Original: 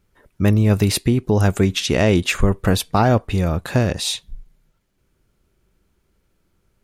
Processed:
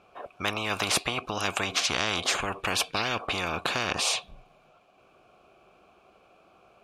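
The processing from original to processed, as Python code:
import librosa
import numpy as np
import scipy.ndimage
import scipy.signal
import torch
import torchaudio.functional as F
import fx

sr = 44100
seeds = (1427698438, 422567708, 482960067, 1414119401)

y = fx.vowel_filter(x, sr, vowel='a')
y = fx.spectral_comp(y, sr, ratio=10.0)
y = y * 10.0 ** (4.0 / 20.0)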